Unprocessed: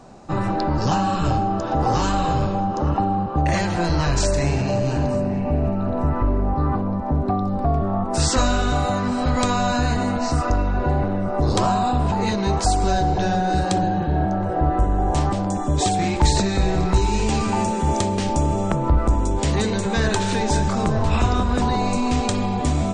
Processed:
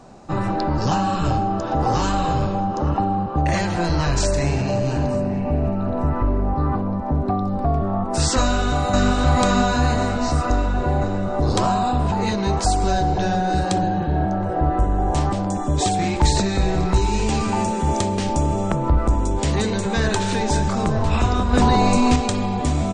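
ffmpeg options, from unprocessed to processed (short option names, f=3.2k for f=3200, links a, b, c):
-filter_complex "[0:a]asplit=2[a][b];[b]afade=t=in:st=8.41:d=0.01,afade=t=out:st=9.1:d=0.01,aecho=0:1:520|1040|1560|2080|2600|3120|3640|4160|4680:0.944061|0.566437|0.339862|0.203917|0.12235|0.0734102|0.0440461|0.0264277|0.0158566[c];[a][c]amix=inputs=2:normalize=0,asettb=1/sr,asplit=3[d][e][f];[d]atrim=end=21.534[g];[e]atrim=start=21.53:end=22.16,asetpts=PTS-STARTPTS,afade=t=in:d=0.004:c=qsin,afade=t=out:st=0.626:d=0.004:c=qsin,acontrast=32[h];[f]atrim=start=22.156[i];[g][h]acrossfade=d=0.004:c1=hsin:c2=qsin[j];[j][i]acrossfade=d=0.004:c1=qsin:c2=hsin"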